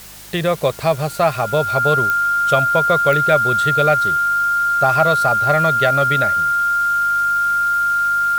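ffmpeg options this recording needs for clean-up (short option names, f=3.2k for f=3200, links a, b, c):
-af "adeclick=t=4,bandreject=f=50.5:t=h:w=4,bandreject=f=101:t=h:w=4,bandreject=f=151.5:t=h:w=4,bandreject=f=202:t=h:w=4,bandreject=f=1.4k:w=30,afwtdn=0.013"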